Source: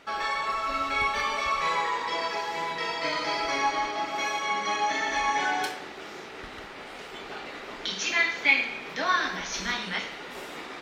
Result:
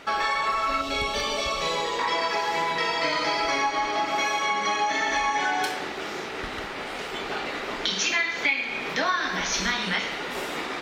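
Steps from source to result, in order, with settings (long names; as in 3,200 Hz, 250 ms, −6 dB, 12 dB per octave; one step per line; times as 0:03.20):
0:00.81–0:01.99: flat-topped bell 1,400 Hz −10.5 dB
downward compressor 5 to 1, threshold −30 dBFS, peak gain reduction 13 dB
level +8 dB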